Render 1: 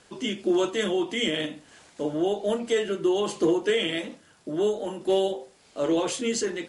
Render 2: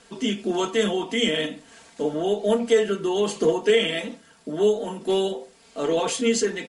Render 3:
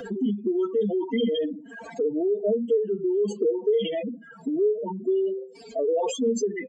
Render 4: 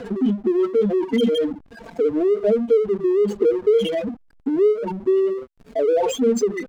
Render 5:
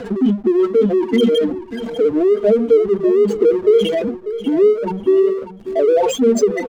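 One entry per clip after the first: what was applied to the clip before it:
comb 4.4 ms; gain +2 dB
spectral contrast raised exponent 3.8; three-band squash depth 70%; gain -1 dB
backlash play -34 dBFS; gain +6 dB
feedback echo 0.593 s, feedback 24%, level -12.5 dB; gain +4.5 dB

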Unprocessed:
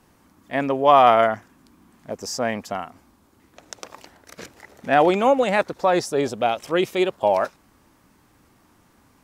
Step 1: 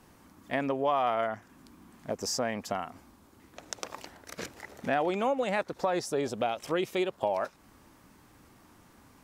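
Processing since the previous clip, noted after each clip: compressor 3:1, threshold -29 dBFS, peak gain reduction 14.5 dB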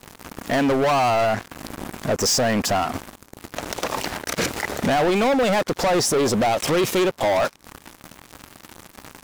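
sample leveller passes 5; limiter -25 dBFS, peak gain reduction 11 dB; gain +9 dB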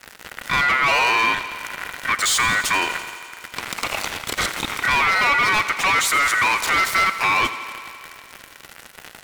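ring modulator 1700 Hz; thinning echo 84 ms, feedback 80%, high-pass 160 Hz, level -14.5 dB; gain +3.5 dB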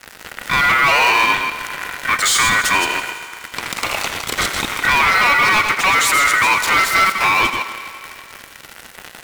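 reverse delay 0.125 s, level -6 dB; in parallel at -7 dB: companded quantiser 4-bit

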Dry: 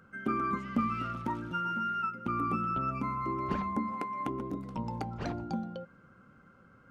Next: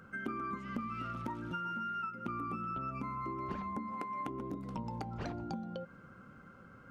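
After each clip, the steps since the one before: compressor 5:1, threshold -41 dBFS, peak gain reduction 15 dB; gain +3.5 dB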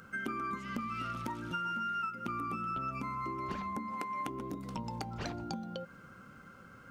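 high shelf 2400 Hz +11.5 dB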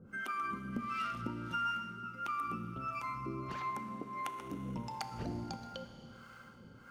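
harmonic tremolo 1.5 Hz, depth 100%, crossover 610 Hz; Schroeder reverb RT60 3.7 s, combs from 26 ms, DRR 8 dB; gain +2.5 dB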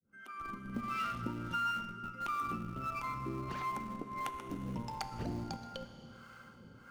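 opening faded in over 0.89 s; in parallel at -11 dB: Schmitt trigger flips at -37.5 dBFS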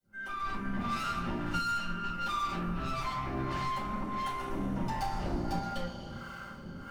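tube stage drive 43 dB, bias 0.5; shoebox room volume 170 m³, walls furnished, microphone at 5 m; gain +1.5 dB

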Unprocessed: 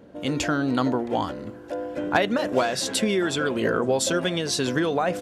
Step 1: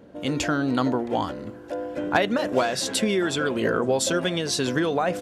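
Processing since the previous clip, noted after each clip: nothing audible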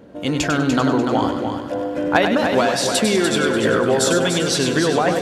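multi-head echo 98 ms, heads first and third, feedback 48%, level -7 dB; gain +4.5 dB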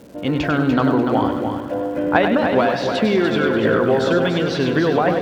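air absorption 280 m; crackle 400/s -41 dBFS; gain +1.5 dB

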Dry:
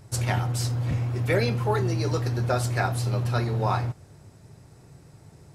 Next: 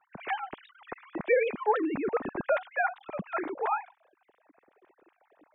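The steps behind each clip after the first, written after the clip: sine-wave speech; gain -6 dB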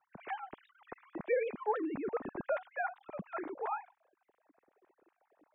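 LPF 1700 Hz 6 dB/oct; gain -6.5 dB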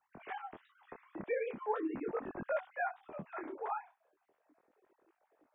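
detuned doubles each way 14 cents; gain +2 dB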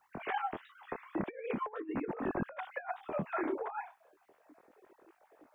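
negative-ratio compressor -42 dBFS, ratio -0.5; gain +6 dB

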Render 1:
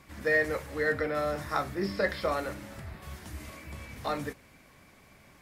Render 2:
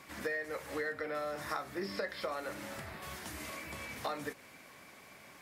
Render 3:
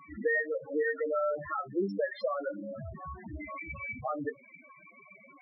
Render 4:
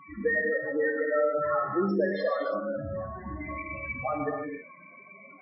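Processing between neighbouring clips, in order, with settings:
HPF 380 Hz 6 dB/oct; compressor 12:1, threshold -38 dBFS, peak gain reduction 16.5 dB; gain +4 dB
in parallel at -7 dB: hard clip -31.5 dBFS, distortion -17 dB; on the sum: loudest bins only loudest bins 4; gain +6.5 dB
non-linear reverb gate 0.33 s flat, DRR 0.5 dB; gain +3 dB; MP3 16 kbps 22050 Hz

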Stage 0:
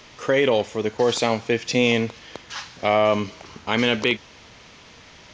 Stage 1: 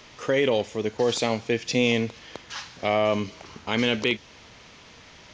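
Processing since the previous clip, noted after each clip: dynamic EQ 1100 Hz, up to -4 dB, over -34 dBFS, Q 0.8; gain -2 dB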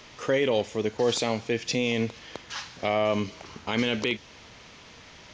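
limiter -14 dBFS, peak gain reduction 5.5 dB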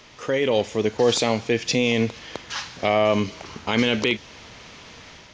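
AGC gain up to 5.5 dB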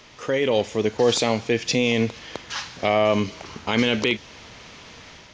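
nothing audible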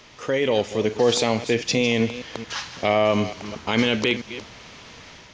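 reverse delay 0.222 s, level -13 dB

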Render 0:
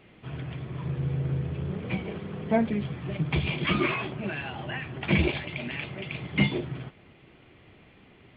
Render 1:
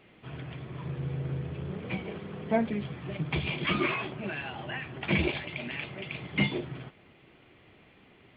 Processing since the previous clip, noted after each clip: low shelf 180 Hz -5.5 dB; gain -1.5 dB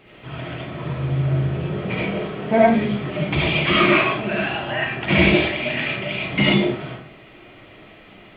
digital reverb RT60 0.49 s, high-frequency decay 0.65×, pre-delay 30 ms, DRR -5.5 dB; gain +7 dB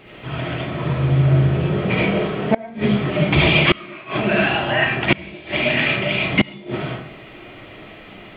flipped gate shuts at -8 dBFS, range -26 dB; gain +5.5 dB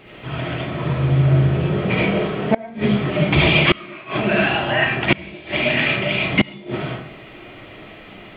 nothing audible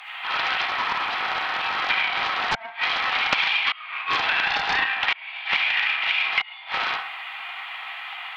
steep high-pass 750 Hz 96 dB/oct; compressor 16:1, threshold -28 dBFS, peak gain reduction 16 dB; Doppler distortion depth 0.54 ms; gain +9 dB

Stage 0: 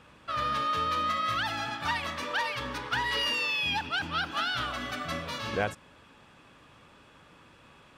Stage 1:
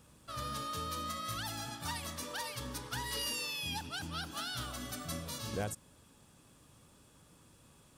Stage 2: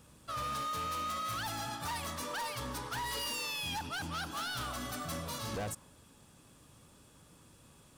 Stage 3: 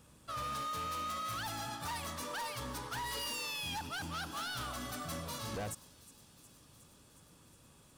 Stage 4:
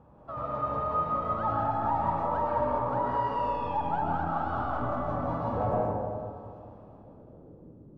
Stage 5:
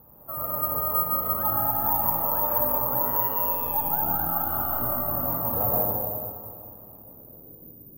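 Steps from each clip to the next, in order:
EQ curve 130 Hz 0 dB, 1700 Hz -12 dB, 2500 Hz -12 dB, 9600 Hz +12 dB; gain -1.5 dB
dynamic EQ 1000 Hz, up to +6 dB, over -56 dBFS, Q 0.98; hard clip -36.5 dBFS, distortion -10 dB; gain +2 dB
thin delay 0.363 s, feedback 75%, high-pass 4700 Hz, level -15.5 dB; gain -2 dB
low-pass sweep 830 Hz -> 310 Hz, 6.65–7.75; digital reverb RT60 2.3 s, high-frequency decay 0.35×, pre-delay 85 ms, DRR -4 dB; gain +4.5 dB
careless resampling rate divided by 3×, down none, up zero stuff; gain -1 dB

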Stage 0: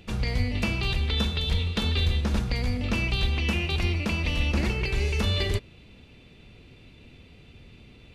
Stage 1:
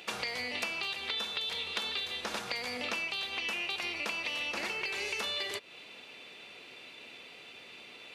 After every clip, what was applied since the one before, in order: HPF 640 Hz 12 dB/oct; compressor 6:1, threshold -41 dBFS, peak gain reduction 13.5 dB; gain +8 dB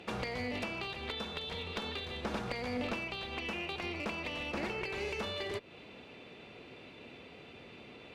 tilt -4 dB/oct; one-sided clip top -33.5 dBFS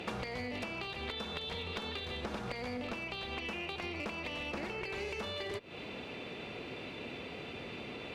compressor 6:1, threshold -45 dBFS, peak gain reduction 13 dB; gain +8 dB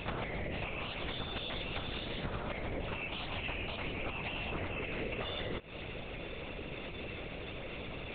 LPC vocoder at 8 kHz whisper; gain +1.5 dB

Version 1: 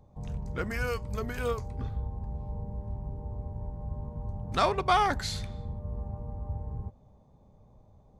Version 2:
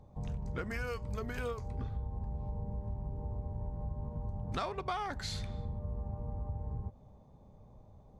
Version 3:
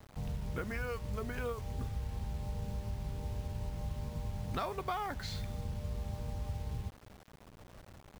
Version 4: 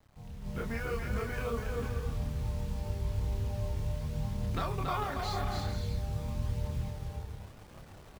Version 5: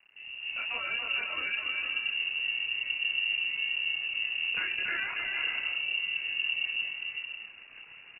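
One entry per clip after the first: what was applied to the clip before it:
high shelf 9200 Hz -7.5 dB; compressor 6:1, threshold -35 dBFS, peak gain reduction 14.5 dB; gain +1 dB
high shelf 5900 Hz -10 dB; bit-crush 9-bit
on a send: bouncing-ball echo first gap 0.28 s, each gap 0.6×, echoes 5; on the sum: chorus voices 2, 0.45 Hz, delay 28 ms, depth 2.4 ms; AGC gain up to 10.5 dB; gain -6 dB
inverted band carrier 2800 Hz

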